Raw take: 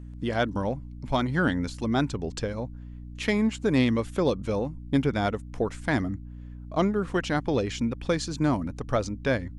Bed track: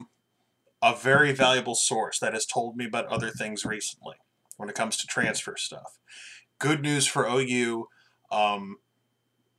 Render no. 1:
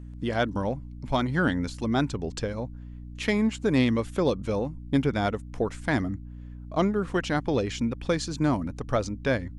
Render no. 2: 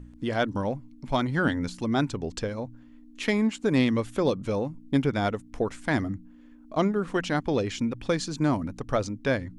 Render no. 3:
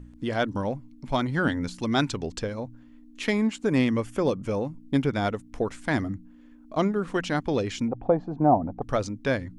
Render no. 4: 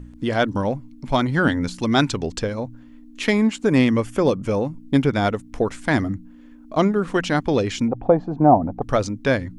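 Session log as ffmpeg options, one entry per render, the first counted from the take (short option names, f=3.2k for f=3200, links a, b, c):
-af anull
-af "bandreject=f=60:t=h:w=4,bandreject=f=120:t=h:w=4,bandreject=f=180:t=h:w=4"
-filter_complex "[0:a]asettb=1/sr,asplit=3[a][b][c];[a]atrim=end=1.834[d];[b]atrim=start=1.83:end=2.27,asetpts=PTS-STARTPTS,afade=t=in:d=0.004:c=qsin,afade=t=out:st=0.436:d=0.004:c=qsin,equalizer=f=4.1k:w=0.35:g=7[e];[c]atrim=start=2.266[f];[d][e]acrossfade=d=0.004:c1=hsin:c2=qsin[g];[g][f]acrossfade=d=0.004:c1=qsin:c2=hsin,asettb=1/sr,asplit=3[h][i][j];[h]atrim=end=3.654[k];[i]atrim=start=3.65:end=4.61,asetpts=PTS-STARTPTS,afade=t=in:d=0.004:c=qsin,afade=t=out:st=0.956:d=0.004:c=qsin,equalizer=f=3.9k:w=6.7:g=-12.5[l];[j]atrim=start=4.606[m];[k][l]acrossfade=d=0.004:c1=hsin:c2=qsin[n];[n][m]acrossfade=d=0.004:c1=qsin:c2=hsin,asettb=1/sr,asplit=3[o][p][q];[o]atrim=end=7.884[r];[p]atrim=start=7.88:end=8.82,asetpts=PTS-STARTPTS,afade=t=in:d=0.004:c=qsin,afade=t=out:st=0.936:d=0.004:c=qsin,lowpass=f=750:t=q:w=7.5[s];[q]atrim=start=8.816[t];[r][s]acrossfade=d=0.004:c1=hsin:c2=qsin[u];[u][t]acrossfade=d=0.004:c1=qsin:c2=hsin"
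-af "volume=6dB"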